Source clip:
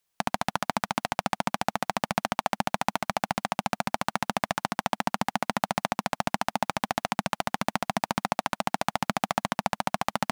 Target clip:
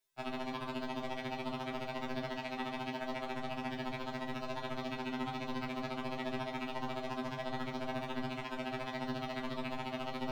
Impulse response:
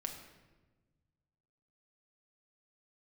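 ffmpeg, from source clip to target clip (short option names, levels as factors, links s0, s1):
-filter_complex "[0:a]aeval=exprs='0.106*(abs(mod(val(0)/0.106+3,4)-2)-1)':c=same,acrossover=split=4300[s0][s1];[s1]acompressor=threshold=0.002:ratio=4:attack=1:release=60[s2];[s0][s2]amix=inputs=2:normalize=0[s3];[1:a]atrim=start_sample=2205,asetrate=74970,aresample=44100[s4];[s3][s4]afir=irnorm=-1:irlink=0,afftfilt=real='re*2.45*eq(mod(b,6),0)':imag='im*2.45*eq(mod(b,6),0)':win_size=2048:overlap=0.75,volume=1.5"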